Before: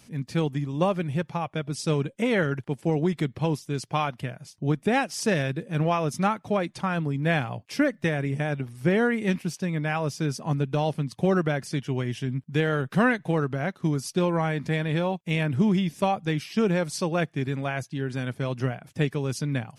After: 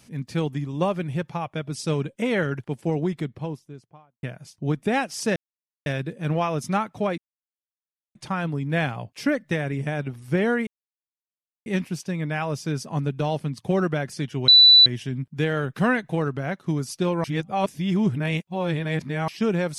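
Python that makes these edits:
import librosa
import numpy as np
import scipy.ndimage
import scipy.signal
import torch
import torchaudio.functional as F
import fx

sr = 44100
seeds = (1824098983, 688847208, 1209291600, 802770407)

y = fx.studio_fade_out(x, sr, start_s=2.78, length_s=1.45)
y = fx.edit(y, sr, fx.insert_silence(at_s=5.36, length_s=0.5),
    fx.insert_silence(at_s=6.68, length_s=0.97),
    fx.insert_silence(at_s=9.2, length_s=0.99),
    fx.insert_tone(at_s=12.02, length_s=0.38, hz=3970.0, db=-8.5),
    fx.reverse_span(start_s=14.4, length_s=2.04), tone=tone)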